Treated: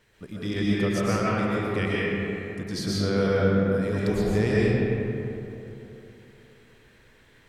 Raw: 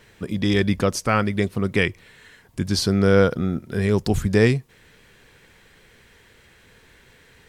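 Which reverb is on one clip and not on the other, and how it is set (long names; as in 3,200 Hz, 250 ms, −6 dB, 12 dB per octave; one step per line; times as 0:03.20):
comb and all-pass reverb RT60 3.2 s, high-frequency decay 0.45×, pre-delay 85 ms, DRR −7 dB
level −11.5 dB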